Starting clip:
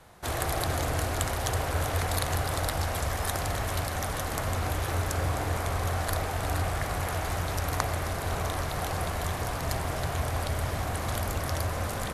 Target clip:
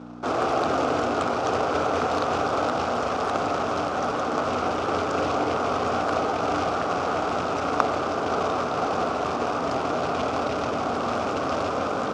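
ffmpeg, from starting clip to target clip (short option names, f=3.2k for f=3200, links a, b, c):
-af "highshelf=f=1.7k:t=q:w=3:g=-8.5,acrusher=bits=3:mode=log:mix=0:aa=0.000001,aeval=exprs='val(0)+0.0126*(sin(2*PI*60*n/s)+sin(2*PI*2*60*n/s)/2+sin(2*PI*3*60*n/s)/3+sin(2*PI*4*60*n/s)/4+sin(2*PI*5*60*n/s)/5)':c=same,highpass=260,equalizer=f=260:t=q:w=4:g=7,equalizer=f=430:t=q:w=4:g=4,equalizer=f=1k:t=q:w=4:g=-6,equalizer=f=1.7k:t=q:w=4:g=-7,equalizer=f=2.5k:t=q:w=4:g=5,equalizer=f=4.1k:t=q:w=4:g=-4,lowpass=f=5.6k:w=0.5412,lowpass=f=5.6k:w=1.3066,volume=7.5dB"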